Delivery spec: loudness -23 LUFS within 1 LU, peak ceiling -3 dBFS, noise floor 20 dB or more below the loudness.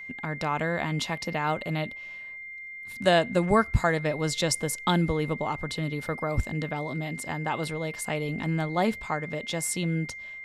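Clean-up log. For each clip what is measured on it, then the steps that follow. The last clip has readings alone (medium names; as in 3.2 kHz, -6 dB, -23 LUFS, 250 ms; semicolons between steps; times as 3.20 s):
steady tone 2.1 kHz; tone level -38 dBFS; loudness -28.0 LUFS; peak level -9.0 dBFS; loudness target -23.0 LUFS
-> band-stop 2.1 kHz, Q 30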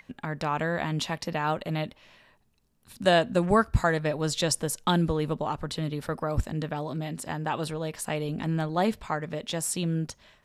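steady tone not found; loudness -28.5 LUFS; peak level -9.5 dBFS; loudness target -23.0 LUFS
-> trim +5.5 dB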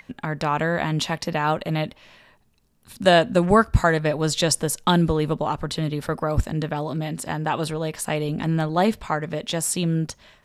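loudness -23.0 LUFS; peak level -4.0 dBFS; noise floor -59 dBFS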